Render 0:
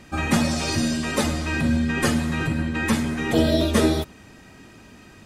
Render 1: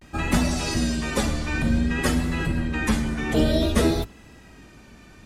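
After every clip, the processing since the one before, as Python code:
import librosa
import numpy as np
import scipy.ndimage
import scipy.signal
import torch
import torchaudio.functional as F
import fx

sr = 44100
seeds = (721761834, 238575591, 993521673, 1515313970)

y = fx.octave_divider(x, sr, octaves=2, level_db=-2.0)
y = fx.vibrato(y, sr, rate_hz=0.55, depth_cents=82.0)
y = y * librosa.db_to_amplitude(-2.0)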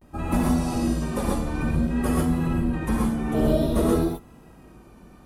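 y = fx.band_shelf(x, sr, hz=3500.0, db=-11.5, octaves=2.6)
y = fx.rev_gated(y, sr, seeds[0], gate_ms=160, shape='rising', drr_db=-3.0)
y = y * librosa.db_to_amplitude(-3.5)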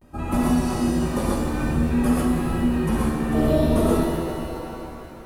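y = fx.rev_shimmer(x, sr, seeds[1], rt60_s=3.2, semitones=7, shimmer_db=-8, drr_db=3.0)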